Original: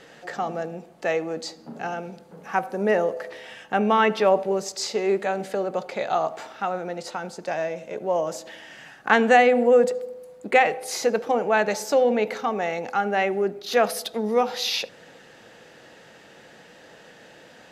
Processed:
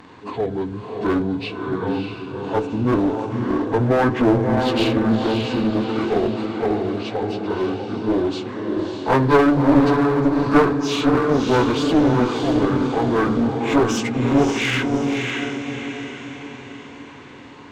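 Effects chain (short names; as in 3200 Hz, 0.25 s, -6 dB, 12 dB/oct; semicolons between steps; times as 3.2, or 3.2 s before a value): pitch shift by moving bins -9.5 st; diffused feedback echo 0.605 s, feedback 48%, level -4 dB; one-sided clip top -24 dBFS; gain +6 dB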